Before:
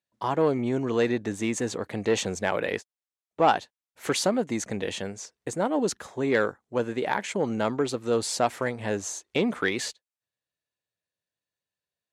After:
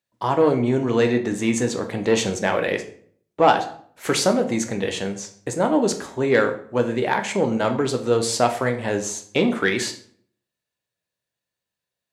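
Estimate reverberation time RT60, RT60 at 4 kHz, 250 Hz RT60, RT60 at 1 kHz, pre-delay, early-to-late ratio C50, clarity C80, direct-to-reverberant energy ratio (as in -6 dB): 0.55 s, 0.40 s, 0.70 s, 0.55 s, 10 ms, 11.5 dB, 15.5 dB, 5.5 dB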